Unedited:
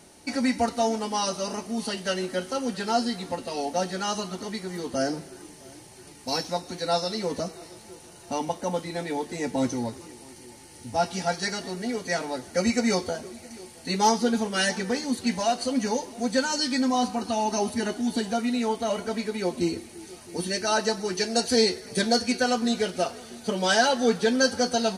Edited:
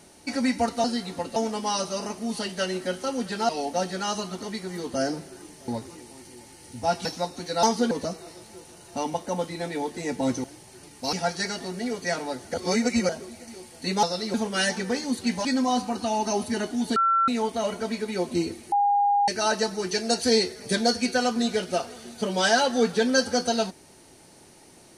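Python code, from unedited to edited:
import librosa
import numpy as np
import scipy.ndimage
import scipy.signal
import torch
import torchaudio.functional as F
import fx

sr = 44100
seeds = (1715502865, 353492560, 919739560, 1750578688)

y = fx.edit(x, sr, fx.move(start_s=2.97, length_s=0.52, to_s=0.84),
    fx.swap(start_s=5.68, length_s=0.69, other_s=9.79, other_length_s=1.37),
    fx.swap(start_s=6.95, length_s=0.31, other_s=14.06, other_length_s=0.28),
    fx.reverse_span(start_s=12.57, length_s=0.55),
    fx.cut(start_s=15.45, length_s=1.26),
    fx.bleep(start_s=18.22, length_s=0.32, hz=1350.0, db=-18.0),
    fx.bleep(start_s=19.98, length_s=0.56, hz=812.0, db=-18.0), tone=tone)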